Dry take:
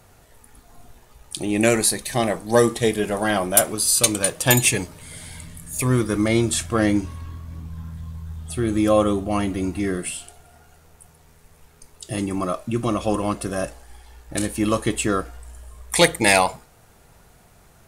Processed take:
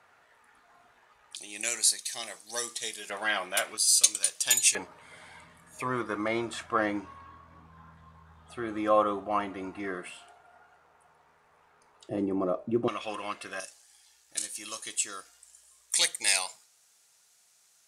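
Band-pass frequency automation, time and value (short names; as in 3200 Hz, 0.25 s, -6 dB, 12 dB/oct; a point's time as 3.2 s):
band-pass, Q 1.3
1500 Hz
from 1.36 s 6000 Hz
from 3.1 s 2300 Hz
from 3.77 s 5900 Hz
from 4.75 s 1100 Hz
from 12.09 s 440 Hz
from 12.88 s 2300 Hz
from 13.6 s 6400 Hz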